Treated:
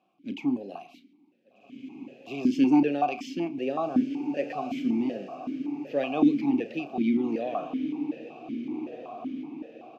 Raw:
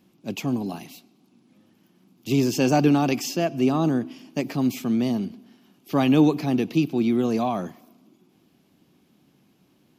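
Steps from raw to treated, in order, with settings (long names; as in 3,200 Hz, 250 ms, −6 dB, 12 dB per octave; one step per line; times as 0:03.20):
double-tracking delay 35 ms −13 dB
feedback delay with all-pass diffusion 1,603 ms, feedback 51%, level −11 dB
formant filter that steps through the vowels 5.3 Hz
level +6 dB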